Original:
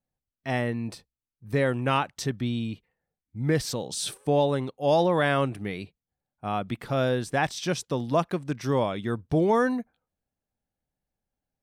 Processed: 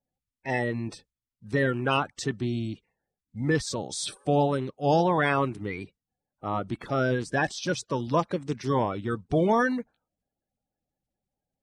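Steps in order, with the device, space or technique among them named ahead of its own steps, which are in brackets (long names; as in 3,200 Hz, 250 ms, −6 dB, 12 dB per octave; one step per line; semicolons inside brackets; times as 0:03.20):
clip after many re-uploads (low-pass filter 9,000 Hz 24 dB per octave; spectral magnitudes quantised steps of 30 dB)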